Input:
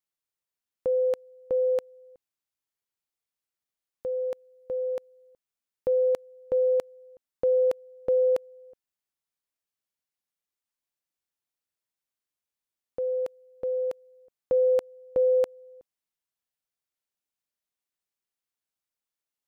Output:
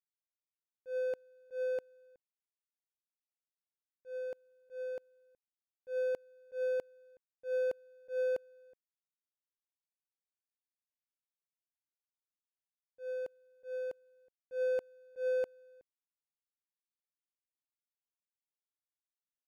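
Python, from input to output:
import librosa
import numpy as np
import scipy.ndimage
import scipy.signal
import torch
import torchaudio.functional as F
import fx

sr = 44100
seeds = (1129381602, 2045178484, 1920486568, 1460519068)

y = scipy.ndimage.median_filter(x, 41, mode='constant')
y = fx.auto_swell(y, sr, attack_ms=117.0)
y = F.gain(torch.from_numpy(y), -8.5).numpy()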